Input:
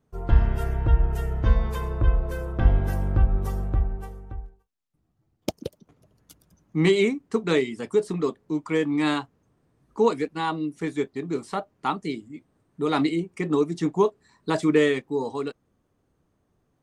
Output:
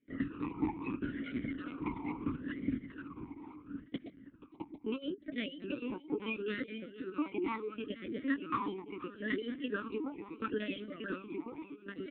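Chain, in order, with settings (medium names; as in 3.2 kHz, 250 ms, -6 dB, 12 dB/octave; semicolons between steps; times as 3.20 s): tracing distortion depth 0.19 ms; reverb removal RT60 1.9 s; compression 20:1, threshold -22 dBFS, peak gain reduction 13 dB; wide varispeed 1.39×; ever faster or slower copies 179 ms, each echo -2 st, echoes 3, each echo -6 dB; doubling 14 ms -10 dB; on a send: feedback delay 482 ms, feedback 58%, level -14.5 dB; on the sum: LPC vocoder at 8 kHz pitch kept; talking filter i-u 0.74 Hz; trim +6.5 dB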